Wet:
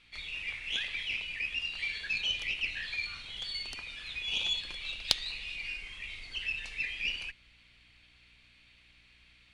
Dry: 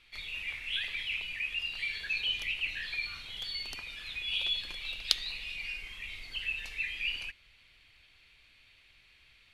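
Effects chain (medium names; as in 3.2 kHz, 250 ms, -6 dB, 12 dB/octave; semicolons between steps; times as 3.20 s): resampled via 22.05 kHz; Chebyshev shaper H 8 -21 dB, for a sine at -2 dBFS; hum 60 Hz, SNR 32 dB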